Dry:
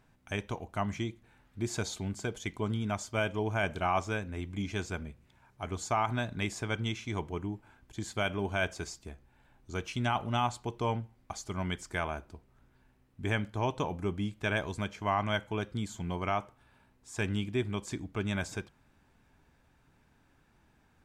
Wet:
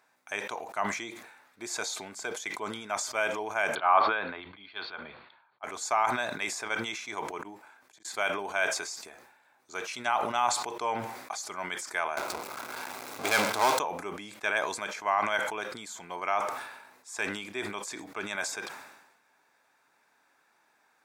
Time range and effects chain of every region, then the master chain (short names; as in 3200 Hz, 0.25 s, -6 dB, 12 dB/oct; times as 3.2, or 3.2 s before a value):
3.75–5.64 rippled Chebyshev low-pass 4500 Hz, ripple 6 dB + three-band expander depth 100%
7.41–8.05 low shelf 73 Hz -5.5 dB + flipped gate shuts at -35 dBFS, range -28 dB + compressor 12:1, threshold -57 dBFS
12.17–13.79 power-law curve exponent 0.35 + notch 1800 Hz, Q 6.2
whole clip: HPF 670 Hz 12 dB/oct; bell 3000 Hz -9 dB 0.25 oct; sustainer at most 55 dB/s; gain +4.5 dB